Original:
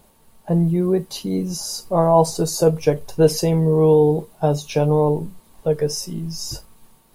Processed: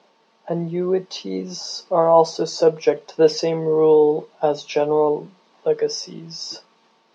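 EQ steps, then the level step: Chebyshev band-pass 170–5700 Hz, order 4; tone controls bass -14 dB, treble -2 dB; +2.5 dB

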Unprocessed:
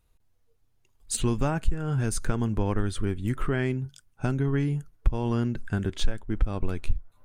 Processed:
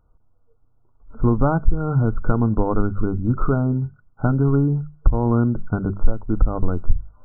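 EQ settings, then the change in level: brick-wall FIR low-pass 1500 Hz; notches 50/100/150/200 Hz; notch 380 Hz, Q 12; +8.5 dB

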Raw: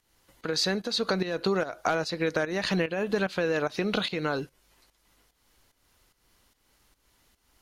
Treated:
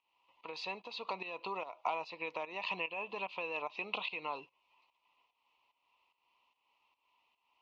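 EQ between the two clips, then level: double band-pass 1600 Hz, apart 1.4 oct; air absorption 130 m; notch 1500 Hz, Q 7.3; +4.0 dB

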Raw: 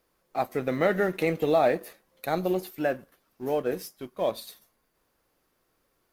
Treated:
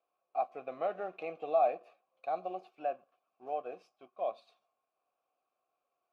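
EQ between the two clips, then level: vowel filter a; LPF 6900 Hz; 0.0 dB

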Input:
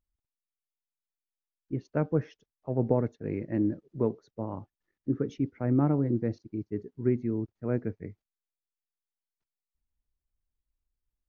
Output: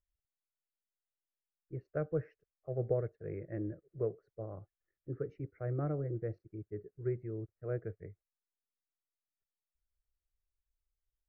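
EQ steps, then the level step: air absorption 370 m; fixed phaser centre 920 Hz, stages 6; -3.5 dB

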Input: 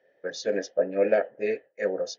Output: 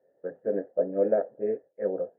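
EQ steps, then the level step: Gaussian blur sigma 7.1 samples; air absorption 450 m; +1.0 dB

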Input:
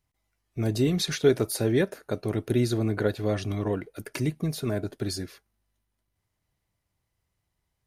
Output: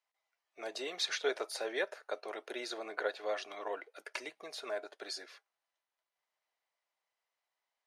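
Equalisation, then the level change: HPF 570 Hz 24 dB/oct; air absorption 85 m; -2.0 dB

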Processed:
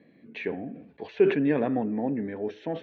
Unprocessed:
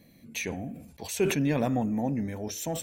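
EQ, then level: air absorption 260 m; speaker cabinet 180–3900 Hz, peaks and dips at 300 Hz +4 dB, 420 Hz +9 dB, 1700 Hz +7 dB; 0.0 dB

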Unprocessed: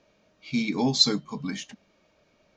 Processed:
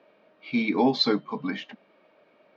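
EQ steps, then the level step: HPF 320 Hz 12 dB/oct; LPF 6900 Hz; air absorption 390 m; +8.0 dB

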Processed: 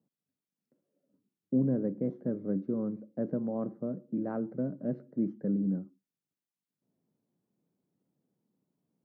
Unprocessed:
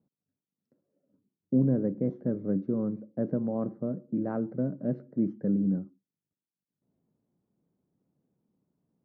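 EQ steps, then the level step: HPF 130 Hz 12 dB/oct; -2.5 dB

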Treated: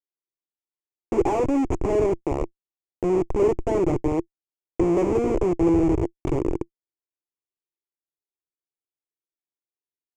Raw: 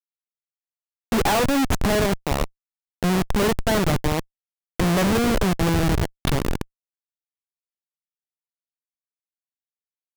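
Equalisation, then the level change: EQ curve 130 Hz 0 dB, 210 Hz -8 dB, 340 Hz +13 dB, 590 Hz 0 dB, 1000 Hz 0 dB, 1600 Hz -16 dB, 2300 Hz -5 dB, 3900 Hz -25 dB, 7000 Hz -7 dB, 12000 Hz -29 dB; -4.0 dB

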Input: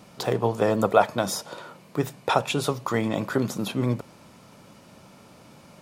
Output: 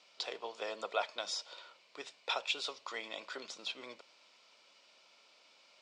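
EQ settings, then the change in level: air absorption 150 m; speaker cabinet 410–7200 Hz, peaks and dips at 830 Hz -5 dB, 1200 Hz -5 dB, 1700 Hz -7 dB, 6400 Hz -6 dB; differentiator; +6.5 dB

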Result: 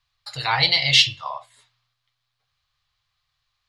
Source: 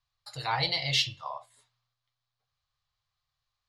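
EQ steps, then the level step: dynamic EQ 8500 Hz, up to +5 dB, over -45 dBFS, Q 1.3; low shelf 220 Hz +6 dB; bell 2600 Hz +10.5 dB 2.8 oct; +1.5 dB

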